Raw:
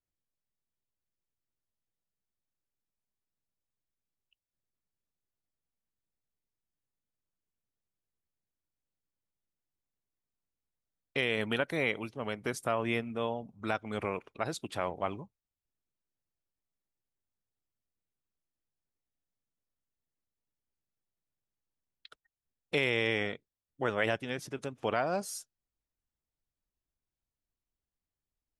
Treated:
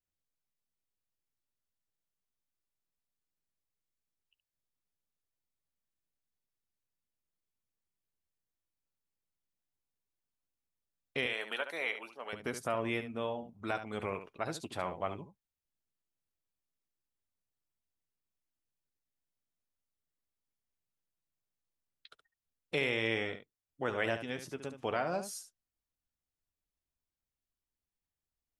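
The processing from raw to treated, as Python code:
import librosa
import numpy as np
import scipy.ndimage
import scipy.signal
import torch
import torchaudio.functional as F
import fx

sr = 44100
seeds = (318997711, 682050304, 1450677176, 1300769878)

y = fx.highpass(x, sr, hz=610.0, slope=12, at=(11.26, 12.33))
y = fx.room_early_taps(y, sr, ms=(12, 71), db=(-11.5, -10.0))
y = F.gain(torch.from_numpy(y), -3.5).numpy()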